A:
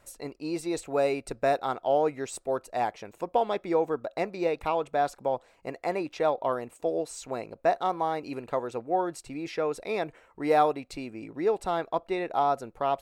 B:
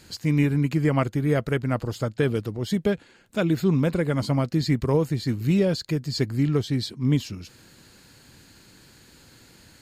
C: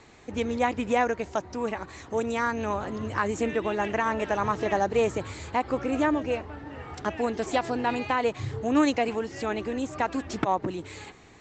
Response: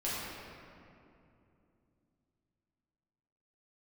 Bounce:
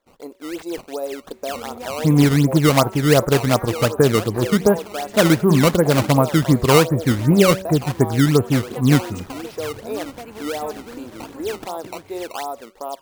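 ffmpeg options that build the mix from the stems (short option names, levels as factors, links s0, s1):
-filter_complex "[0:a]equalizer=f=125:t=o:w=1:g=-12,equalizer=f=250:t=o:w=1:g=10,equalizer=f=500:t=o:w=1:g=8,equalizer=f=1000:t=o:w=1:g=8,equalizer=f=2000:t=o:w=1:g=-6,equalizer=f=4000:t=o:w=1:g=5,equalizer=f=8000:t=o:w=1:g=10,alimiter=limit=0.251:level=0:latency=1:release=236,acrusher=bits=10:mix=0:aa=0.000001,volume=0.112[s0];[1:a]lowpass=f=1100:w=0.5412,lowpass=f=1100:w=1.3066,tiltshelf=f=760:g=-8,adelay=1800,volume=1.26[s1];[2:a]acompressor=threshold=0.0447:ratio=2.5,adelay=1200,volume=0.119[s2];[s0][s1][s2]amix=inputs=3:normalize=0,dynaudnorm=f=110:g=3:m=4.22,bandreject=f=189.3:t=h:w=4,bandreject=f=378.6:t=h:w=4,bandreject=f=567.9:t=h:w=4,bandreject=f=757.2:t=h:w=4,bandreject=f=946.5:t=h:w=4,bandreject=f=1135.8:t=h:w=4,bandreject=f=1325.1:t=h:w=4,bandreject=f=1514.4:t=h:w=4,bandreject=f=1703.7:t=h:w=4,bandreject=f=1893:t=h:w=4,bandreject=f=2082.3:t=h:w=4,bandreject=f=2271.6:t=h:w=4,bandreject=f=2460.9:t=h:w=4,bandreject=f=2650.2:t=h:w=4,bandreject=f=2839.5:t=h:w=4,bandreject=f=3028.8:t=h:w=4,bandreject=f=3218.1:t=h:w=4,bandreject=f=3407.4:t=h:w=4,bandreject=f=3596.7:t=h:w=4,bandreject=f=3786:t=h:w=4,bandreject=f=3975.3:t=h:w=4,bandreject=f=4164.6:t=h:w=4,bandreject=f=4353.9:t=h:w=4,acrusher=samples=15:mix=1:aa=0.000001:lfo=1:lforange=24:lforate=2.7"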